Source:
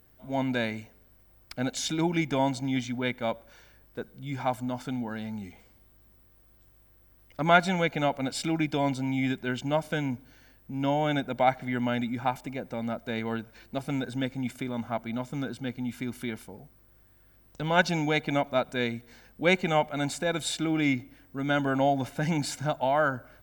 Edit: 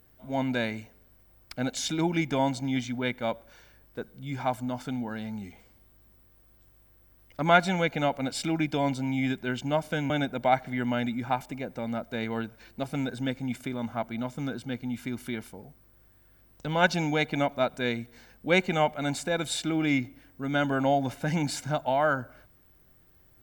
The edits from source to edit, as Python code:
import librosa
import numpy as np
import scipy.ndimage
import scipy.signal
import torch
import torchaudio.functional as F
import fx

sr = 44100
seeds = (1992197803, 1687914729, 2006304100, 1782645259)

y = fx.edit(x, sr, fx.cut(start_s=10.1, length_s=0.95), tone=tone)